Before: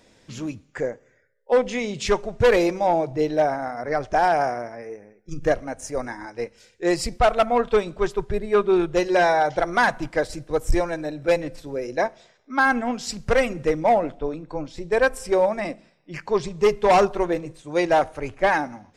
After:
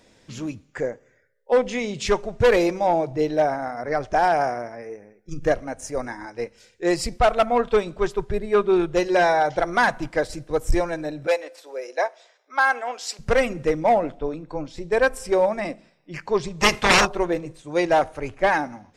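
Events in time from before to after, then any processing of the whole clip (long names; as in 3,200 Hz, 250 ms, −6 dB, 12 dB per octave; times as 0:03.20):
0:11.27–0:13.19: high-pass filter 470 Hz 24 dB per octave
0:16.60–0:17.05: ceiling on every frequency bin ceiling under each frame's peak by 27 dB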